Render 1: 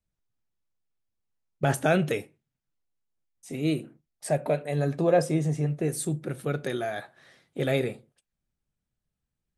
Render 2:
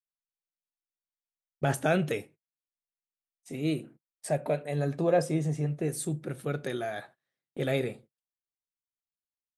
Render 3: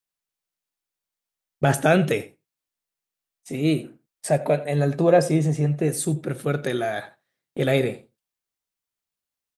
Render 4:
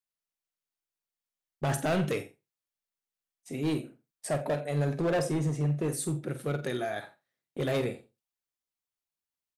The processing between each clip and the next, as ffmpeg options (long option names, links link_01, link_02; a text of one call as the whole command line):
ffmpeg -i in.wav -af "agate=range=-28dB:threshold=-48dB:ratio=16:detection=peak,volume=-3dB" out.wav
ffmpeg -i in.wav -af "aecho=1:1:89:0.119,volume=8dB" out.wav
ffmpeg -i in.wav -filter_complex "[0:a]volume=17dB,asoftclip=hard,volume=-17dB,asplit=2[link_01][link_02];[link_02]adelay=48,volume=-11dB[link_03];[link_01][link_03]amix=inputs=2:normalize=0,volume=-7dB" out.wav